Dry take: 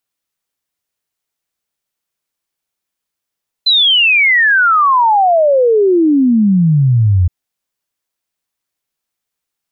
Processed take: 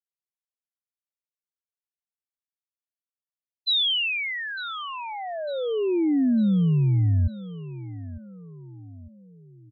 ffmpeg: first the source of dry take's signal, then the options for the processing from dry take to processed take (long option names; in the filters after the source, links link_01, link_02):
-f lavfi -i "aevalsrc='0.447*clip(min(t,3.62-t)/0.01,0,1)*sin(2*PI*4100*3.62/log(85/4100)*(exp(log(85/4100)*t/3.62)-1))':duration=3.62:sample_rate=44100"
-filter_complex "[0:a]agate=range=-33dB:threshold=-3dB:ratio=3:detection=peak,acrossover=split=400|3000[link_01][link_02][link_03];[link_02]acompressor=threshold=-38dB:ratio=5[link_04];[link_01][link_04][link_03]amix=inputs=3:normalize=0,aecho=1:1:902|1804|2706|3608:0.158|0.0713|0.0321|0.0144"